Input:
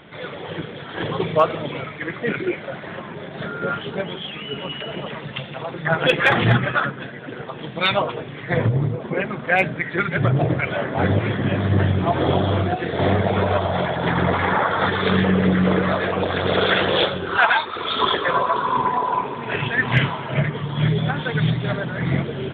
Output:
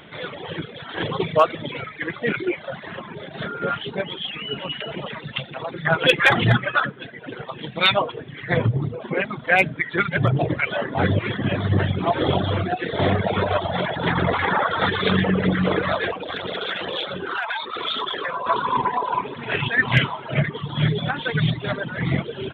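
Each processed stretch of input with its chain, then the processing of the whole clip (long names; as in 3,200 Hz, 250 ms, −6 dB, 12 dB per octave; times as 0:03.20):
0:16.12–0:18.46: parametric band 78 Hz −9 dB 1.6 octaves + downward compressor 12 to 1, threshold −22 dBFS
whole clip: reverb reduction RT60 0.99 s; high-shelf EQ 3,300 Hz +7.5 dB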